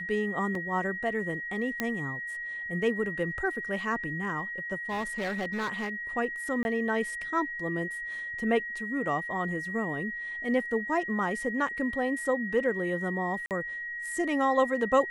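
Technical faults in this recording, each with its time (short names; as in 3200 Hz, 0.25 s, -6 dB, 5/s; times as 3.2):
tone 1900 Hz -34 dBFS
0.55 gap 2.6 ms
1.8 pop -14 dBFS
4.89–5.89 clipped -28 dBFS
6.63–6.65 gap 21 ms
13.46–13.51 gap 48 ms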